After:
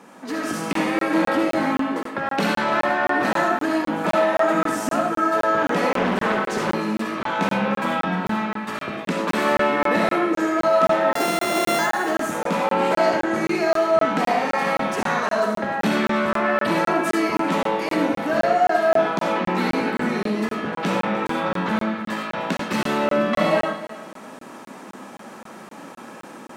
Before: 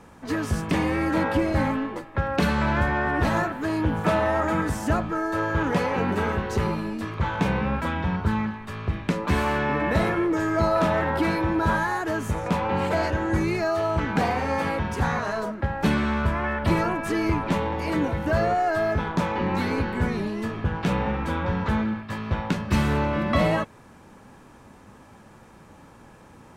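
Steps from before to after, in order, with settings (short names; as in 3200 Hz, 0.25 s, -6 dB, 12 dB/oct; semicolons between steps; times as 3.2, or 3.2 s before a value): 11.15–11.79 sample sorter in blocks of 64 samples; in parallel at +2 dB: compressor, threshold -37 dBFS, peak gain reduction 19 dB; on the sum: soft clip -13.5 dBFS, distortion -20 dB; on a send at -1 dB: reverb RT60 0.40 s, pre-delay 25 ms; on the sum: AGC gain up to 6 dB; Chebyshev high-pass 210 Hz, order 3; multi-head echo 0.101 s, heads first and third, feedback 43%, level -16.5 dB; crackling interface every 0.26 s, samples 1024, zero, from 0.73; 5.97–6.74 Doppler distortion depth 0.47 ms; gain -3.5 dB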